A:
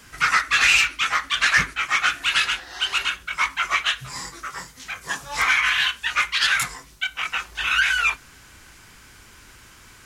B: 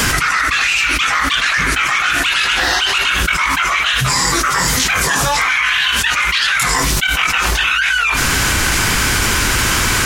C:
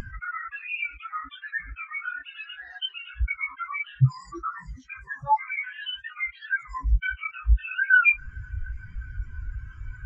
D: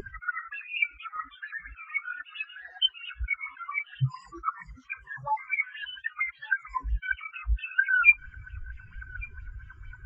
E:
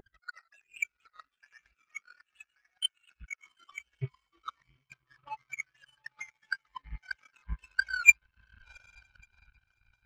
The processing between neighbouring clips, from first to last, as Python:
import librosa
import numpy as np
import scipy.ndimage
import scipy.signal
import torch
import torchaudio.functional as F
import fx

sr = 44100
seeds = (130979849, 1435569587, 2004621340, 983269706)

y1 = fx.env_flatten(x, sr, amount_pct=100)
y1 = y1 * 10.0 ** (-1.0 / 20.0)
y2 = fx.spectral_expand(y1, sr, expansion=4.0)
y2 = y2 * 10.0 ** (-7.0 / 20.0)
y3 = y2 + 10.0 ** (-24.0 / 20.0) * np.pad(y2, (int(1162 * sr / 1000.0), 0))[:len(y2)]
y3 = fx.bell_lfo(y3, sr, hz=4.4, low_hz=390.0, high_hz=3400.0, db=16)
y3 = y3 * 10.0 ** (-8.0 / 20.0)
y4 = fx.echo_diffused(y3, sr, ms=786, feedback_pct=41, wet_db=-15.0)
y4 = fx.power_curve(y4, sr, exponent=2.0)
y4 = y4 * 10.0 ** (3.0 / 20.0)